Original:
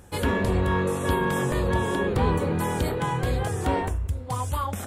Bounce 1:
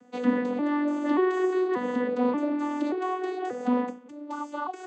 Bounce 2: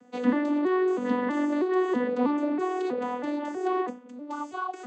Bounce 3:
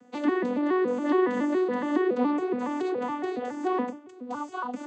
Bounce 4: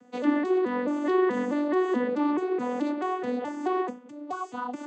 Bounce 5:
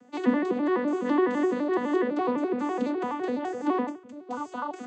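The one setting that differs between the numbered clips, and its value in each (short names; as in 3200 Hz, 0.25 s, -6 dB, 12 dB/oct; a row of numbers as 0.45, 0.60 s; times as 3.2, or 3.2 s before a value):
arpeggiated vocoder, a note every: 583, 322, 140, 215, 84 ms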